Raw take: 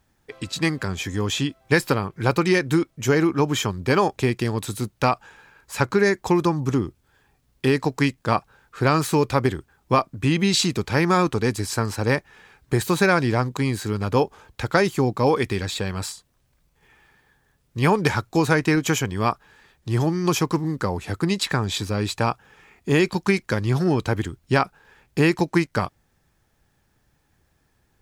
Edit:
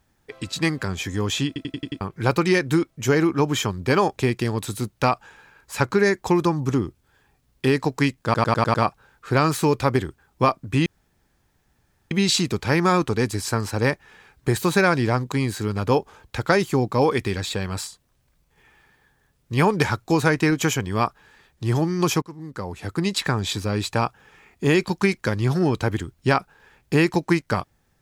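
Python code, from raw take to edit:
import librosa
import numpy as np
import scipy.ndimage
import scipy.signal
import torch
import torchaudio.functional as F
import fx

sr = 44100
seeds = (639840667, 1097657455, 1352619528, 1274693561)

y = fx.edit(x, sr, fx.stutter_over(start_s=1.47, slice_s=0.09, count=6),
    fx.stutter(start_s=8.24, slice_s=0.1, count=6),
    fx.insert_room_tone(at_s=10.36, length_s=1.25),
    fx.fade_in_from(start_s=20.47, length_s=0.94, floor_db=-23.0), tone=tone)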